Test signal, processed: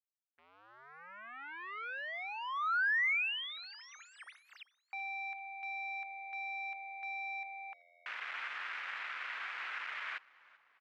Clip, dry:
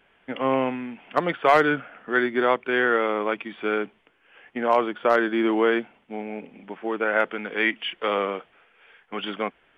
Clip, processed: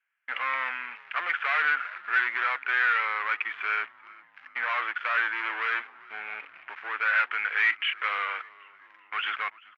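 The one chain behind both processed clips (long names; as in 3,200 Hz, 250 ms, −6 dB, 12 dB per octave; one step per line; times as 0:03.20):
leveller curve on the samples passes 5
flat-topped band-pass 1,800 Hz, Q 1.4
high-frequency loss of the air 55 metres
echo with shifted repeats 389 ms, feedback 52%, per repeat −86 Hz, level −23 dB
level −6.5 dB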